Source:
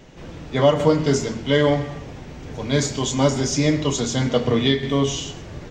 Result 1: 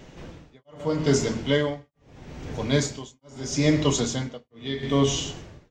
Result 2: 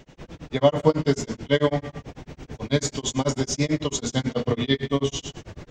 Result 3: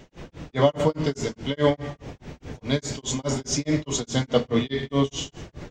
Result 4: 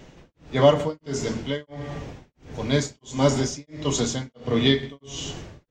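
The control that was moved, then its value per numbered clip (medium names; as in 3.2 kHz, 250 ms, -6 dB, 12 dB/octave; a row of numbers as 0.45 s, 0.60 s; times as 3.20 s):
tremolo, rate: 0.78 Hz, 9.1 Hz, 4.8 Hz, 1.5 Hz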